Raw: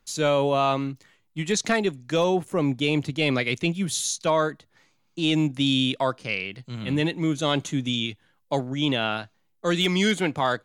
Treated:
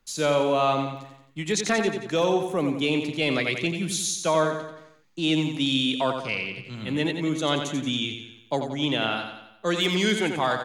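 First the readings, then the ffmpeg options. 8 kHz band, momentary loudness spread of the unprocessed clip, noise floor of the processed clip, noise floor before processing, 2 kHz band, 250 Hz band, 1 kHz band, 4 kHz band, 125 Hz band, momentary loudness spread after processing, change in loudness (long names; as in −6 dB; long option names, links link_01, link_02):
0.0 dB, 8 LU, −55 dBFS, −68 dBFS, 0.0 dB, −1.0 dB, 0.0 dB, 0.0 dB, −3.5 dB, 10 LU, −0.5 dB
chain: -filter_complex "[0:a]acrossover=split=190[link_01][link_02];[link_01]alimiter=level_in=9.5dB:limit=-24dB:level=0:latency=1:release=488,volume=-9.5dB[link_03];[link_03][link_02]amix=inputs=2:normalize=0,aecho=1:1:89|178|267|356|445|534:0.447|0.223|0.112|0.0558|0.0279|0.014,volume=-1dB"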